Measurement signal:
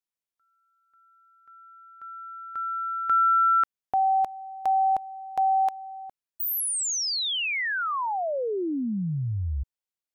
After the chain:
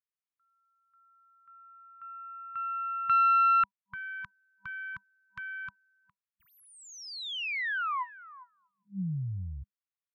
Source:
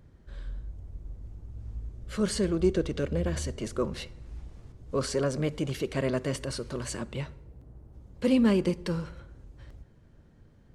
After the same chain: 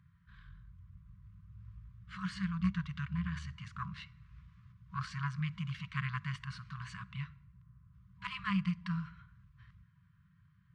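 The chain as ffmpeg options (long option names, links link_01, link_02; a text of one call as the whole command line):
ffmpeg -i in.wav -af "aeval=exprs='0.237*(cos(1*acos(clip(val(0)/0.237,-1,1)))-cos(1*PI/2))+0.0841*(cos(2*acos(clip(val(0)/0.237,-1,1)))-cos(2*PI/2))+0.0266*(cos(3*acos(clip(val(0)/0.237,-1,1)))-cos(3*PI/2))+0.015*(cos(4*acos(clip(val(0)/0.237,-1,1)))-cos(4*PI/2))+0.0075*(cos(6*acos(clip(val(0)/0.237,-1,1)))-cos(6*PI/2))':channel_layout=same,afftfilt=real='re*(1-between(b*sr/4096,200,970))':imag='im*(1-between(b*sr/4096,200,970))':win_size=4096:overlap=0.75,highpass=110,lowpass=2600" out.wav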